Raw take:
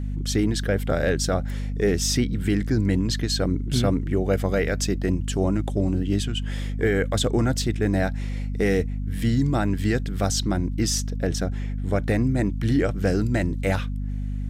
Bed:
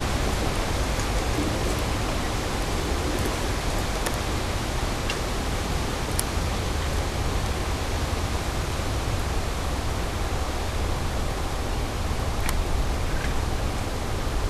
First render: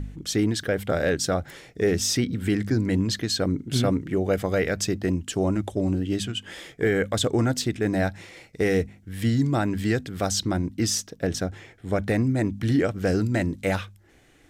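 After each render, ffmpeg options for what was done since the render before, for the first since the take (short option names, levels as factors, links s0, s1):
-af "bandreject=f=50:t=h:w=4,bandreject=f=100:t=h:w=4,bandreject=f=150:t=h:w=4,bandreject=f=200:t=h:w=4,bandreject=f=250:t=h:w=4"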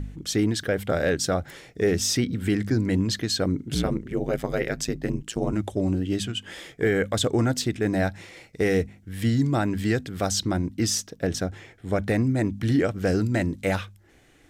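-filter_complex "[0:a]asettb=1/sr,asplit=3[s0][s1][s2];[s0]atrim=end=3.744[s3];[s1]atrim=start=3.74:end=5.53,asetpts=PTS-STARTPTS,afade=t=in:d=0.004:c=qsin,afade=t=out:st=1.786:d=0.004:c=qsin,aeval=exprs='val(0)*sin(2*PI*56*n/s)':c=same[s4];[s2]atrim=start=5.526[s5];[s3][s4]acrossfade=d=0.004:c1=hsin:c2=qsin[s6];[s6][s5]acrossfade=d=0.004:c1=qsin:c2=hsin"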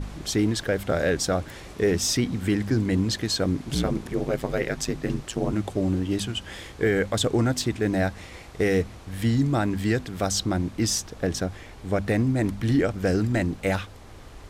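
-filter_complex "[1:a]volume=0.126[s0];[0:a][s0]amix=inputs=2:normalize=0"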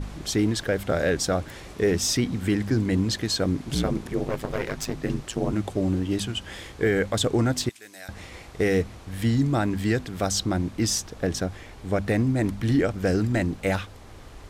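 -filter_complex "[0:a]asettb=1/sr,asplit=3[s0][s1][s2];[s0]atrim=end=4.274[s3];[s1]atrim=start=4.27:end=5.03,asetpts=PTS-STARTPTS,afade=t=in:d=0.004:c=qsin,afade=t=out:st=0.756:d=0.004:c=qsin,aeval=exprs='clip(val(0),-1,0.0266)':c=same[s4];[s2]atrim=start=5.026[s5];[s3][s4]acrossfade=d=0.004:c1=hsin:c2=qsin[s6];[s6][s5]acrossfade=d=0.004:c1=qsin:c2=hsin,asettb=1/sr,asplit=3[s7][s8][s9];[s7]atrim=end=7.694[s10];[s8]atrim=start=7.69:end=8.09,asetpts=PTS-STARTPTS,afade=t=in:d=0.004:c=qsin,afade=t=out:st=0.396:d=0.004:c=qsin,aderivative[s11];[s9]atrim=start=8.086[s12];[s10][s11]acrossfade=d=0.004:c1=hsin:c2=qsin[s13];[s13][s12]acrossfade=d=0.004:c1=qsin:c2=hsin"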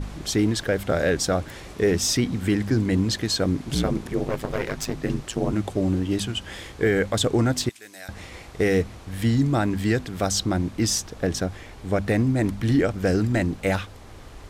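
-af "volume=1.19"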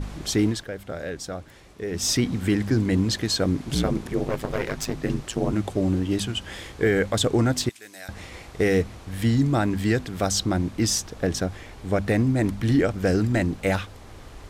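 -filter_complex "[0:a]asplit=3[s0][s1][s2];[s0]atrim=end=0.65,asetpts=PTS-STARTPTS,afade=t=out:st=0.46:d=0.19:silence=0.298538[s3];[s1]atrim=start=0.65:end=1.9,asetpts=PTS-STARTPTS,volume=0.299[s4];[s2]atrim=start=1.9,asetpts=PTS-STARTPTS,afade=t=in:d=0.19:silence=0.298538[s5];[s3][s4][s5]concat=n=3:v=0:a=1"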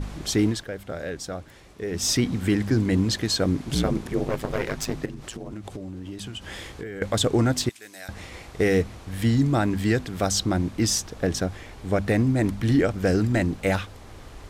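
-filter_complex "[0:a]asettb=1/sr,asplit=3[s0][s1][s2];[s0]atrim=end=5.054[s3];[s1]atrim=start=5.05:end=7.02,asetpts=PTS-STARTPTS,afade=t=in:d=0.004:c=qsin,afade=t=out:st=1.966:d=0.004:c=qsin,acompressor=threshold=0.0282:ratio=10:attack=3.2:release=140:knee=1:detection=peak[s4];[s2]atrim=start=7.016[s5];[s3][s4]acrossfade=d=0.004:c1=hsin:c2=qsin[s6];[s6][s5]acrossfade=d=0.004:c1=qsin:c2=hsin"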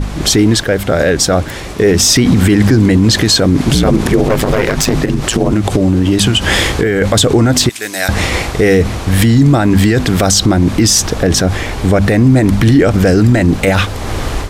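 -af "dynaudnorm=f=150:g=3:m=3.98,alimiter=level_in=4.73:limit=0.891:release=50:level=0:latency=1"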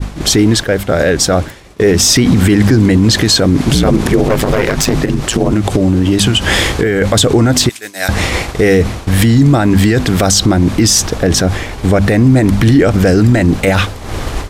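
-af "agate=range=0.0224:threshold=0.2:ratio=3:detection=peak"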